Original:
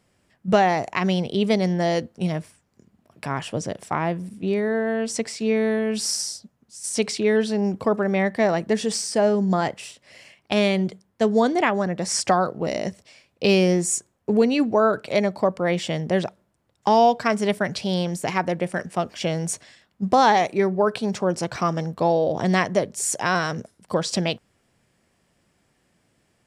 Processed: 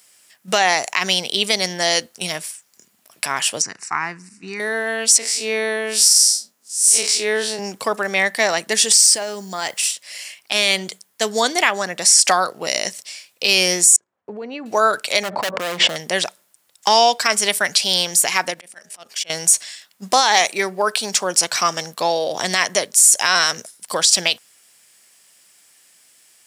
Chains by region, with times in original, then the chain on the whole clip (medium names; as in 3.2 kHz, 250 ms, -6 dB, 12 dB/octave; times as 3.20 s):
3.62–4.60 s: low-pass 6.6 kHz 24 dB/octave + static phaser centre 1.4 kHz, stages 4
5.18–7.59 s: spectral blur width 85 ms + high-pass 260 Hz + tilt shelf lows +3 dB, about 1.4 kHz
8.96–9.82 s: compression, threshold -23 dBFS + word length cut 12-bit, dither none
13.96–14.66 s: low-pass 1.2 kHz + level held to a coarse grid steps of 13 dB
15.23–15.96 s: low-pass 1.1 kHz + overload inside the chain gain 23.5 dB + level flattener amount 100%
18.50–19.30 s: level held to a coarse grid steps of 13 dB + de-hum 208.5 Hz, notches 4 + slow attack 264 ms
whole clip: differentiator; loudness maximiser +22.5 dB; trim -1 dB